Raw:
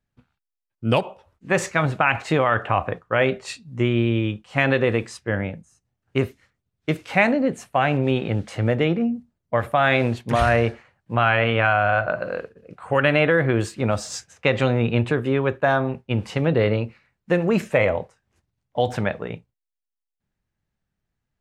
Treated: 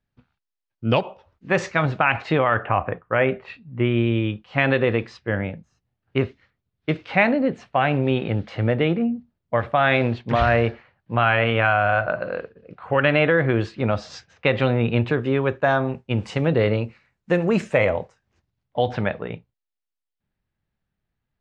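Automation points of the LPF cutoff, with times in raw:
LPF 24 dB/oct
2.14 s 5500 Hz
2.66 s 2700 Hz
3.62 s 2700 Hz
4.21 s 4500 Hz
14.8 s 4500 Hz
15.92 s 8200 Hz
17.9 s 8200 Hz
18.87 s 4500 Hz

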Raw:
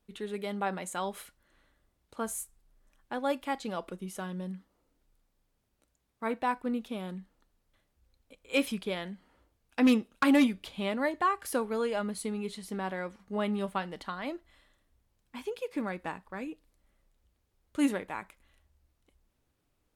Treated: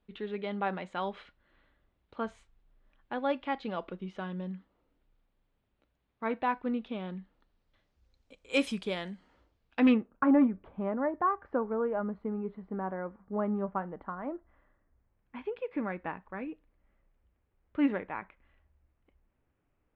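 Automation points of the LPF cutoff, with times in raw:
LPF 24 dB/oct
7.19 s 3600 Hz
8.58 s 8600 Hz
9.13 s 8600 Hz
9.83 s 3600 Hz
10.13 s 1400 Hz
14.35 s 1400 Hz
15.39 s 2500 Hz

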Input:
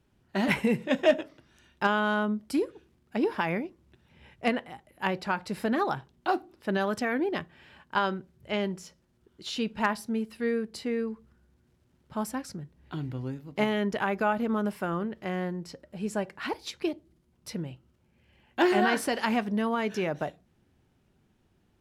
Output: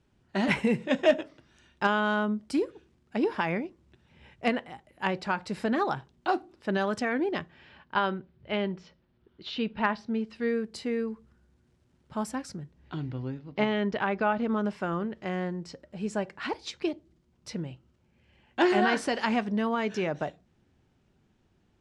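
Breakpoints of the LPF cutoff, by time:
LPF 24 dB/oct
7.25 s 9000 Hz
8.03 s 4100 Hz
9.93 s 4100 Hz
10.73 s 9700 Hz
12.59 s 9700 Hz
13.21 s 5000 Hz
14.22 s 5000 Hz
15.02 s 8100 Hz

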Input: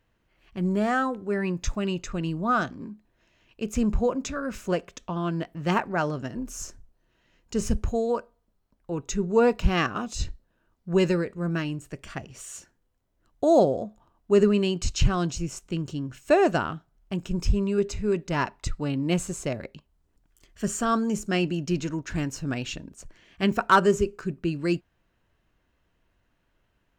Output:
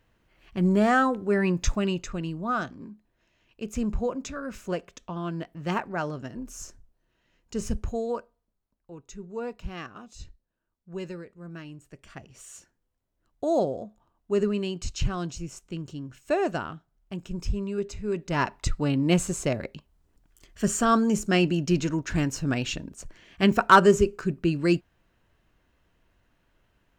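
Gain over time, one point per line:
1.68 s +3.5 dB
2.34 s -4 dB
8.17 s -4 dB
9 s -14 dB
11.44 s -14 dB
12.45 s -5.5 dB
18.02 s -5.5 dB
18.54 s +3 dB

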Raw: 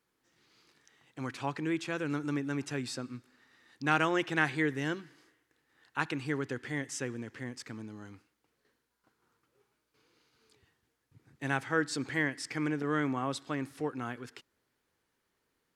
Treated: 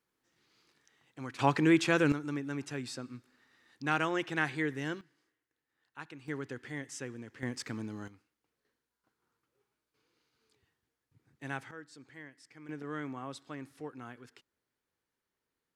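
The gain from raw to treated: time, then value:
-4 dB
from 1.39 s +8 dB
from 2.12 s -3 dB
from 5.01 s -13.5 dB
from 6.28 s -5 dB
from 7.43 s +4 dB
from 8.08 s -7 dB
from 11.71 s -19 dB
from 12.69 s -8.5 dB

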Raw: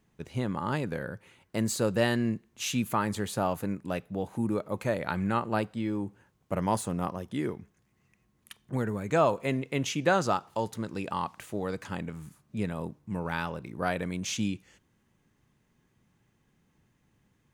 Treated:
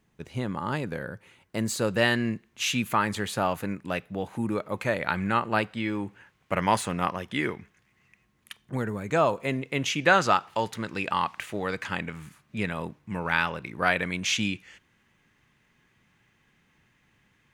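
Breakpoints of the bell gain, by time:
bell 2200 Hz 2.1 oct
1.61 s +2.5 dB
2.08 s +8.5 dB
5.41 s +8.5 dB
6.03 s +15 dB
7.57 s +15 dB
8.9 s +3.5 dB
9.62 s +3.5 dB
10.23 s +12.5 dB

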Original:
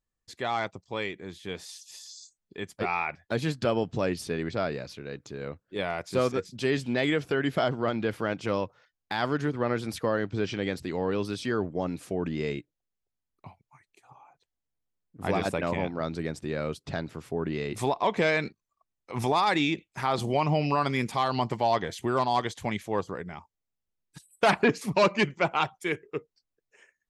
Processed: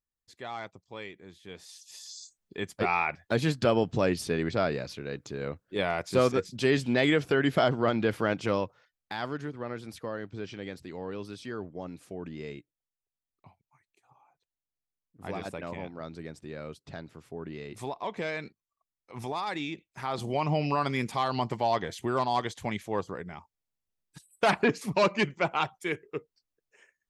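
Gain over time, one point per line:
1.49 s -9 dB
2.15 s +2 dB
8.37 s +2 dB
9.55 s -9 dB
19.71 s -9 dB
20.54 s -2 dB

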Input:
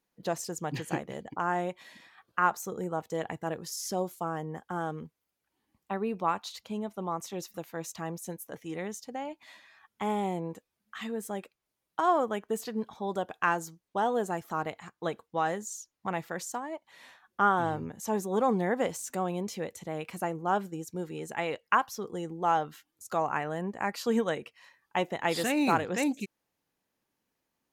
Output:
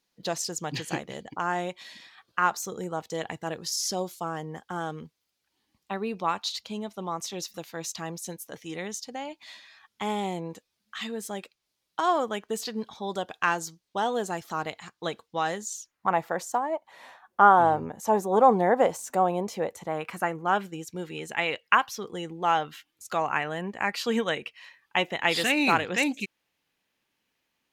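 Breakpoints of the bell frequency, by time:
bell +11 dB 1.7 oct
15.61 s 4400 Hz
16.2 s 760 Hz
19.66 s 760 Hz
20.7 s 2800 Hz

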